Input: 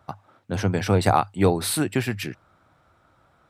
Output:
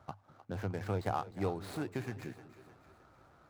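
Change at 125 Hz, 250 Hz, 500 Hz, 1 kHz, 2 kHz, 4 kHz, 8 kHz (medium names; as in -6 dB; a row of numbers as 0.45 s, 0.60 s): -14.5 dB, -15.5 dB, -14.5 dB, -15.0 dB, -16.0 dB, -21.0 dB, -26.0 dB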